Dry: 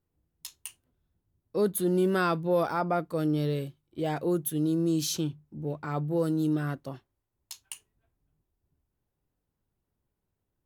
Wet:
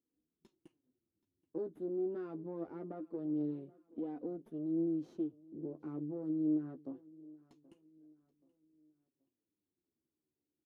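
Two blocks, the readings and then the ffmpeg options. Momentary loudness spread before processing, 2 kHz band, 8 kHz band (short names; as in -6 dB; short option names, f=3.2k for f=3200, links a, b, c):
19 LU, under -25 dB, under -40 dB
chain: -af "acompressor=threshold=-37dB:ratio=2.5,aeval=exprs='0.0944*(cos(1*acos(clip(val(0)/0.0944,-1,1)))-cos(1*PI/2))+0.0133*(cos(6*acos(clip(val(0)/0.0944,-1,1)))-cos(6*PI/2))':c=same,flanger=delay=4:depth=9.5:regen=21:speed=0.24:shape=sinusoidal,bandpass=f=310:t=q:w=3.8:csg=0,aecho=1:1:778|1556|2334:0.0794|0.0318|0.0127,volume=5.5dB"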